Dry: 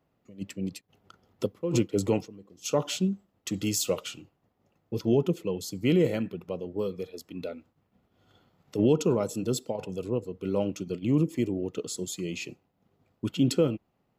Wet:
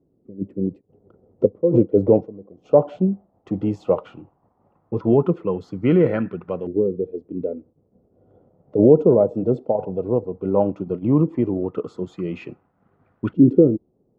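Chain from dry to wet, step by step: LFO low-pass saw up 0.15 Hz 360–1600 Hz; trim +6.5 dB; AAC 128 kbps 48 kHz

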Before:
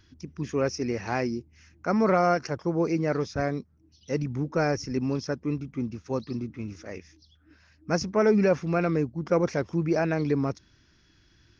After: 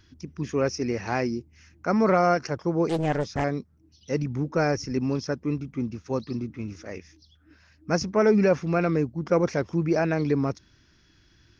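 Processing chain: 2.89–3.44 s: loudspeaker Doppler distortion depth 0.79 ms; trim +1.5 dB

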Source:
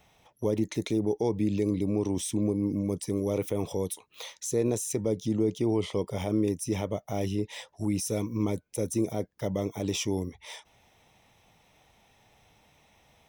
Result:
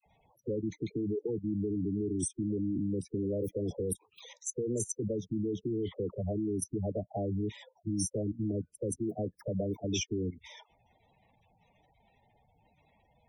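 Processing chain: level held to a coarse grid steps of 17 dB; spectral gate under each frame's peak -10 dB strong; phase dispersion lows, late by 59 ms, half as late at 760 Hz; trim +2.5 dB

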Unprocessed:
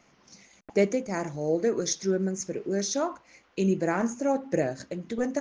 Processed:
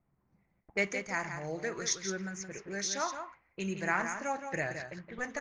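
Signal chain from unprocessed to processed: level-controlled noise filter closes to 330 Hz, open at -24 dBFS; ten-band graphic EQ 250 Hz -12 dB, 500 Hz -9 dB, 1 kHz +3 dB, 2 kHz +8 dB; delay 170 ms -8 dB; trim -3 dB

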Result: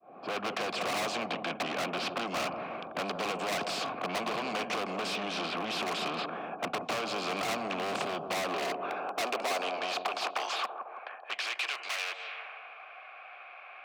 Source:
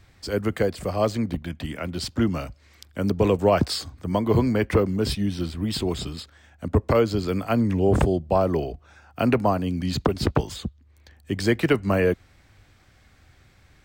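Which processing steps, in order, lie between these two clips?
fade-in on the opening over 0.64 s; high-pass 99 Hz 6 dB/octave; level-controlled noise filter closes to 540 Hz, open at -19.5 dBFS; compression 10:1, threshold -34 dBFS, peak gain reduction 19.5 dB; overdrive pedal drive 33 dB, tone 5.3 kHz, clips at -20 dBFS; vowel filter a; overload inside the chain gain 34.5 dB; high-pass sweep 190 Hz -> 2.2 kHz, 8.22–11.55 s; bucket-brigade echo 164 ms, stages 1024, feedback 49%, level -8.5 dB; spectrum-flattening compressor 2:1; trim +6.5 dB

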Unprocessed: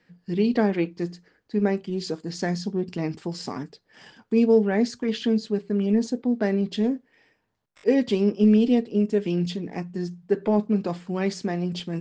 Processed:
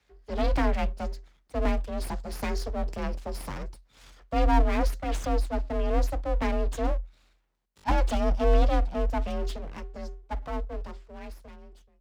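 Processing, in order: fade out at the end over 3.49 s; full-wave rectifier; frequency shift +42 Hz; trim -2 dB

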